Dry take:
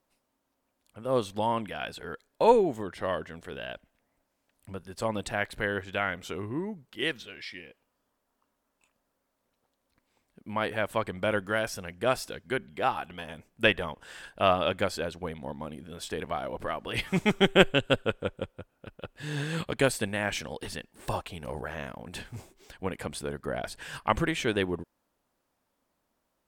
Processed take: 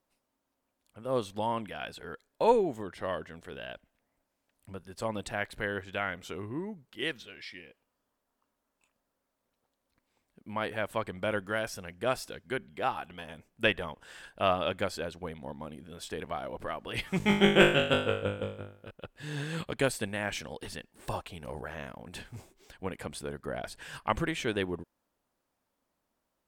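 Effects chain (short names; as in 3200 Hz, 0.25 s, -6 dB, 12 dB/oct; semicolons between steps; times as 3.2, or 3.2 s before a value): 17.18–18.91 flutter echo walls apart 3.4 m, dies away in 0.48 s; gain -3.5 dB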